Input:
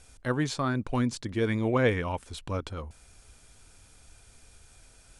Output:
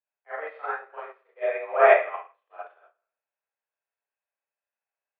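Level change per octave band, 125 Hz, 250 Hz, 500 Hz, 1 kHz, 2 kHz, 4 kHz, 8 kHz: under -40 dB, under -20 dB, +7.0 dB, +8.0 dB, +5.5 dB, under -10 dB, under -35 dB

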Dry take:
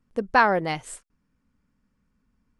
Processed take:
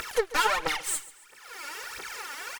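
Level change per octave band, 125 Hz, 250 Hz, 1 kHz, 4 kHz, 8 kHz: -15.0 dB, -14.0 dB, -6.0 dB, +7.0 dB, +11.5 dB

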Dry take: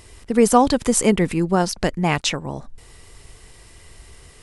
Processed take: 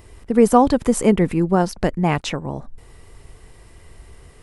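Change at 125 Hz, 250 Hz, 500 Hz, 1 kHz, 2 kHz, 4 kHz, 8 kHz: +2.0 dB, +2.0 dB, +1.5 dB, +0.5 dB, -3.0 dB, -6.5 dB, -7.0 dB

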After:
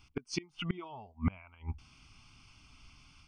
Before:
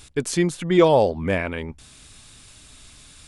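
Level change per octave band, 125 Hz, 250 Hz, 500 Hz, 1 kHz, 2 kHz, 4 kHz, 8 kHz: -11.5 dB, -16.5 dB, -28.5 dB, -22.5 dB, -18.0 dB, -11.5 dB, under -15 dB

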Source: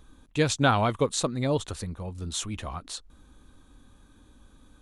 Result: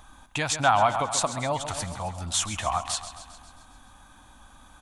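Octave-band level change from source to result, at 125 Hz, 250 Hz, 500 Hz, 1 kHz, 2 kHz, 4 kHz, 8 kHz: -4.5 dB, -7.0 dB, -1.5 dB, +6.0 dB, +2.5 dB, +2.5 dB, +5.5 dB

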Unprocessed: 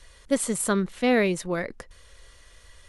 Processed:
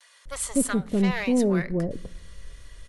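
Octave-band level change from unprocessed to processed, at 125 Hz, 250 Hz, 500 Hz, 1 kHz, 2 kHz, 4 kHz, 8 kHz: +5.0 dB, +3.0 dB, -2.0 dB, -4.0 dB, -3.0 dB, -2.5 dB, -0.5 dB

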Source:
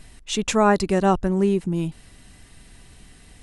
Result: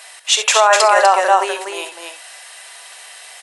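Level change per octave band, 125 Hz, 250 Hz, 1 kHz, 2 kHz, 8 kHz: under -40 dB, -17.5 dB, +11.5 dB, +13.5 dB, +14.0 dB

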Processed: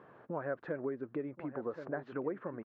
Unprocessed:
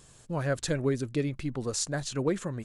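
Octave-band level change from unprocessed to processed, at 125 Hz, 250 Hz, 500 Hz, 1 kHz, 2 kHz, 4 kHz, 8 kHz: -17.0 dB, -8.5 dB, -6.0 dB, -4.5 dB, -8.0 dB, under -30 dB, under -40 dB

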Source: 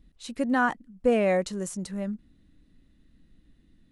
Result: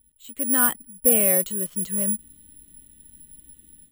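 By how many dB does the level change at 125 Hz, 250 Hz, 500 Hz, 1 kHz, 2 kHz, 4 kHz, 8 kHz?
0.0 dB, -1.0 dB, -2.0 dB, -4.0 dB, -0.5 dB, +3.0 dB, +21.5 dB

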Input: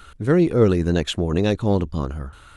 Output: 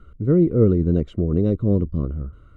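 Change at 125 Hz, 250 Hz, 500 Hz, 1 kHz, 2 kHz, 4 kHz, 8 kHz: +2.0 dB, +1.0 dB, -1.5 dB, -13.5 dB, under -15 dB, under -20 dB, under -25 dB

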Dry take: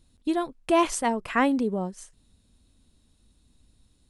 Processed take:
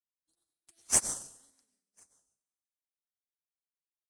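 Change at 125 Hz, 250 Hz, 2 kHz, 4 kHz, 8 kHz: -14.5 dB, -28.5 dB, -17.0 dB, -7.0 dB, +7.0 dB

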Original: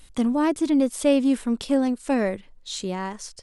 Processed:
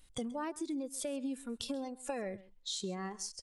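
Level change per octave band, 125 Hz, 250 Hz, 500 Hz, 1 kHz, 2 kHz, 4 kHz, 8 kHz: no reading, -18.0 dB, -15.5 dB, -13.0 dB, -14.5 dB, -7.0 dB, -6.0 dB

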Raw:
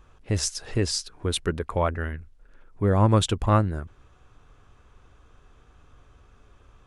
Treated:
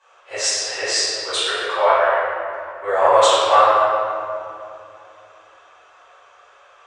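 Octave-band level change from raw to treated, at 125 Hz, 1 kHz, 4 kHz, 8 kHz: under -20 dB, +14.0 dB, +11.0 dB, +8.5 dB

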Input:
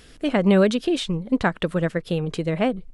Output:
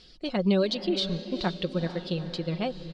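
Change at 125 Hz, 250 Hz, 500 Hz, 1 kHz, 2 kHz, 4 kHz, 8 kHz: -6.0 dB, -7.0 dB, -7.0 dB, -8.0 dB, -10.5 dB, 0.0 dB, -9.5 dB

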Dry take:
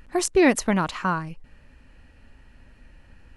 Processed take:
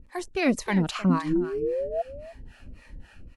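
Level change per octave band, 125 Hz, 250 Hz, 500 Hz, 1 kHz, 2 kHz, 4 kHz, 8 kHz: +3.5 dB, -0.5 dB, -2.5 dB, -5.5 dB, -5.0 dB, -2.5 dB, -10.5 dB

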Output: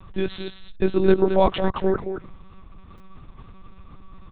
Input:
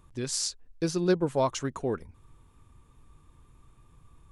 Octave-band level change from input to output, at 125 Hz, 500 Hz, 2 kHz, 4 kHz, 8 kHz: +4.5 dB, +9.0 dB, +7.0 dB, 0.0 dB, under -40 dB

